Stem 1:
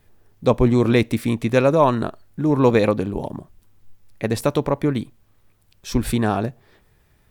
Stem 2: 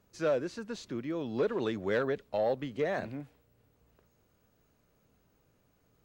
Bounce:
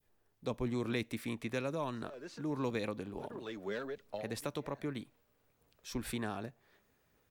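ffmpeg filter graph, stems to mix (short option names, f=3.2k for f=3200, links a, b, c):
-filter_complex "[0:a]adynamicequalizer=threshold=0.0178:dfrequency=1700:dqfactor=0.84:tfrequency=1700:tqfactor=0.84:attack=5:release=100:ratio=0.375:range=2:mode=boostabove:tftype=bell,volume=-13.5dB,asplit=2[a][b];[1:a]aphaser=in_gain=1:out_gain=1:delay=5:decay=0.39:speed=1.3:type=sinusoidal,adelay=1800,volume=-4.5dB[c];[b]apad=whole_len=345934[d];[c][d]sidechaincompress=threshold=-54dB:ratio=4:attack=33:release=141[e];[a][e]amix=inputs=2:normalize=0,acrossover=split=310|3000[f][g][h];[g]acompressor=threshold=-39dB:ratio=3[i];[f][i][h]amix=inputs=3:normalize=0,lowshelf=f=220:g=-9.5"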